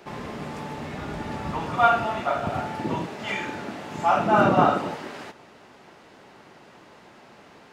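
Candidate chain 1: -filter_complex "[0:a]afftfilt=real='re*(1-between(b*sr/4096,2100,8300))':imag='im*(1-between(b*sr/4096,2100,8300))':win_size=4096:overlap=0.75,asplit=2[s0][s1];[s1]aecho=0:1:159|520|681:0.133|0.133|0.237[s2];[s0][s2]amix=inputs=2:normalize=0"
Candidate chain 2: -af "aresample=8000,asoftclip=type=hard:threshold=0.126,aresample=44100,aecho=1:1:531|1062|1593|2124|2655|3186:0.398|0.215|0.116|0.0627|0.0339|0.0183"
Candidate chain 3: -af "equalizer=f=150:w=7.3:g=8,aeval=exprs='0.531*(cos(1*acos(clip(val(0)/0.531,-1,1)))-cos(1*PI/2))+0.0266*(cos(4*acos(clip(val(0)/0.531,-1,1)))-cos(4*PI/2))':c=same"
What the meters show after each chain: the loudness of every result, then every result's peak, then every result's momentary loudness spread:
-25.0 LUFS, -27.0 LUFS, -24.5 LUFS; -5.5 dBFS, -13.5 dBFS, -5.5 dBFS; 16 LU, 21 LU, 16 LU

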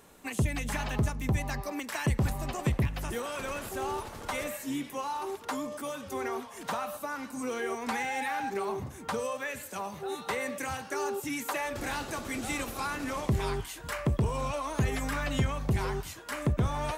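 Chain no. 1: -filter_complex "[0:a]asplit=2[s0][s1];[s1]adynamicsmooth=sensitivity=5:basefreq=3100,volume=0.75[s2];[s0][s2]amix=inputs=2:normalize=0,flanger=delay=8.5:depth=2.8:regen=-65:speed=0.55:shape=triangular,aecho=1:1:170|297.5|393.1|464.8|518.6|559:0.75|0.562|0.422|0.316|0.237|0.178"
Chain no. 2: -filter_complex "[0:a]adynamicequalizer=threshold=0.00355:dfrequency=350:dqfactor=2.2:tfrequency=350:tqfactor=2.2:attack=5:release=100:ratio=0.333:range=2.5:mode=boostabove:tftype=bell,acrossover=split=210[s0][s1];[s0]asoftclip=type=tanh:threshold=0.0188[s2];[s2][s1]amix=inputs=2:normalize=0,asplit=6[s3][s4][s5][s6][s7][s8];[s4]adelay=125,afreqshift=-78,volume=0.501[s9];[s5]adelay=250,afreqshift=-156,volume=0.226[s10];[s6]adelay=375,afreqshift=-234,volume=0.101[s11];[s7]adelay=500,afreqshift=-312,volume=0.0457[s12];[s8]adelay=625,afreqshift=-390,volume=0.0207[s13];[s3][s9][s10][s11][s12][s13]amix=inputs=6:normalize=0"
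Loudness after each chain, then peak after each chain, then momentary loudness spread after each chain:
-29.5 LUFS, -32.0 LUFS; -13.0 dBFS, -15.0 dBFS; 6 LU, 4 LU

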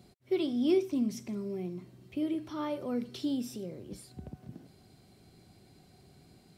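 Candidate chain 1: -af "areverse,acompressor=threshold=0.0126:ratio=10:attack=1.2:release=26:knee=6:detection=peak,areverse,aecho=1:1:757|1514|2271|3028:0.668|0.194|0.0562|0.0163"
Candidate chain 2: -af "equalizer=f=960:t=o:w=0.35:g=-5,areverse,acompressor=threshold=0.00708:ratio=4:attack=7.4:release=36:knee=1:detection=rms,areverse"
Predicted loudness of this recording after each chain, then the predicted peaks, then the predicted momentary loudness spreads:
-42.5 LUFS, -45.0 LUFS; -30.5 dBFS, -33.5 dBFS; 16 LU, 17 LU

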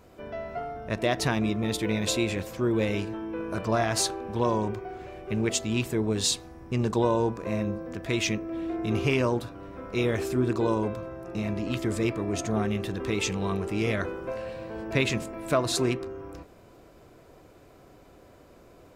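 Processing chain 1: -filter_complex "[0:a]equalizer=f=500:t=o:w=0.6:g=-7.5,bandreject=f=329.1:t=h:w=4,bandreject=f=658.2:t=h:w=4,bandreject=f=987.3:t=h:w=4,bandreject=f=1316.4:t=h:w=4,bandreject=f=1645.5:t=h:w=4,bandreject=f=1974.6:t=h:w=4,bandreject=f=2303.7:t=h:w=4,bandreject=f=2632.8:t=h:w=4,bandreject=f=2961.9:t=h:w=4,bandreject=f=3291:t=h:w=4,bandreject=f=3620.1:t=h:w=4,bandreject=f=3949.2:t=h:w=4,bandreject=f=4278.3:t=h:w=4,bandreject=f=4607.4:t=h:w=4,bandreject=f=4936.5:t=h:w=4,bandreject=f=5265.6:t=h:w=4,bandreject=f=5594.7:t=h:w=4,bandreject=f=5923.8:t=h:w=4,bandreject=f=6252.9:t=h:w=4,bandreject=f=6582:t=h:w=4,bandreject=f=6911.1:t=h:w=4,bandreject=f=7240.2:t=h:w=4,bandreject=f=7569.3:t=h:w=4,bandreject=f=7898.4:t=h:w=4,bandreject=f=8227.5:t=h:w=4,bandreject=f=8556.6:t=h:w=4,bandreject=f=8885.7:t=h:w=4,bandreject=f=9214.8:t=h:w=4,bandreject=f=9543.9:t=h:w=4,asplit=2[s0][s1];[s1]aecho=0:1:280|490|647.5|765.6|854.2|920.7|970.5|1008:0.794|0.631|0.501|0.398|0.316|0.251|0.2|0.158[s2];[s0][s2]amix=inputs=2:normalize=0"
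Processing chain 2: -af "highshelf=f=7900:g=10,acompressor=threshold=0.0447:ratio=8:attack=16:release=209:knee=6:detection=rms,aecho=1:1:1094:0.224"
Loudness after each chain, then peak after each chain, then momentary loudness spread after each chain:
-26.0 LUFS, -33.0 LUFS; -11.0 dBFS, -16.5 dBFS; 5 LU, 8 LU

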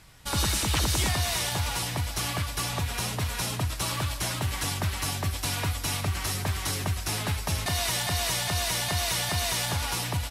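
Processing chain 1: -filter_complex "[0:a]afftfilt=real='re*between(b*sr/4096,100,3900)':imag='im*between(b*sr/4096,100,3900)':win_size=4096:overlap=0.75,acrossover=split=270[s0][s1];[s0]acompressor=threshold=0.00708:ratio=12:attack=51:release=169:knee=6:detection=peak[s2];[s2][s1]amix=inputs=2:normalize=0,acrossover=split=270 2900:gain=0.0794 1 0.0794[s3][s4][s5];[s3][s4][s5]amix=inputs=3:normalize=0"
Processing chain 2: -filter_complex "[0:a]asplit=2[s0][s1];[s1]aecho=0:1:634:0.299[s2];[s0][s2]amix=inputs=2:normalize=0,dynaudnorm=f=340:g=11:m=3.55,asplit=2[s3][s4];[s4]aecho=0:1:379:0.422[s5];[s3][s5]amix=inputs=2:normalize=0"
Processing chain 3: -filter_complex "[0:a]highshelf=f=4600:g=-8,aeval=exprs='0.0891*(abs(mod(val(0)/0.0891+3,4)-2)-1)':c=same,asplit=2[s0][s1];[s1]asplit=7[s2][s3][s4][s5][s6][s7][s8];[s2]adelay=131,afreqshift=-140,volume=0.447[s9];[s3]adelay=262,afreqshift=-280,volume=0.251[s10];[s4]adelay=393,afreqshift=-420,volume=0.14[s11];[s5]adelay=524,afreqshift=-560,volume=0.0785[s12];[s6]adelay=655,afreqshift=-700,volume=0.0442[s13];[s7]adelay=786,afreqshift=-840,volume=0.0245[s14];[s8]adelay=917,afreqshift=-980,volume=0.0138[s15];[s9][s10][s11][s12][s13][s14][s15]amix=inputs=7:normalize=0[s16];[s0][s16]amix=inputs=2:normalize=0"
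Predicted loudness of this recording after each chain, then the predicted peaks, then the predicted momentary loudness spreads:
-35.0 LUFS, -18.0 LUFS, -29.0 LUFS; -18.0 dBFS, -3.5 dBFS, -16.0 dBFS; 4 LU, 7 LU, 4 LU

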